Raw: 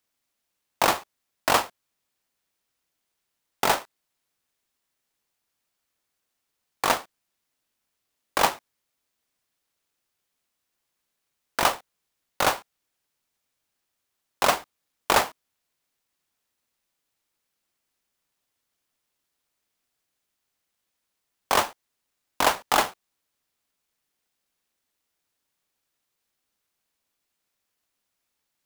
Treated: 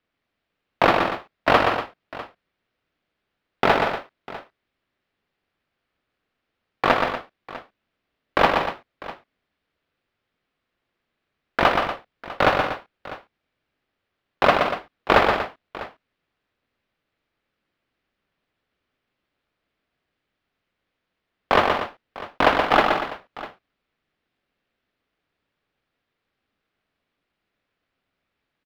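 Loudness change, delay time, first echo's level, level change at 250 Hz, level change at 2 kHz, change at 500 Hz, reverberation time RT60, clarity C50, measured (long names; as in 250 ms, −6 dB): +4.0 dB, 124 ms, −5.0 dB, +9.5 dB, +6.0 dB, +8.0 dB, no reverb audible, no reverb audible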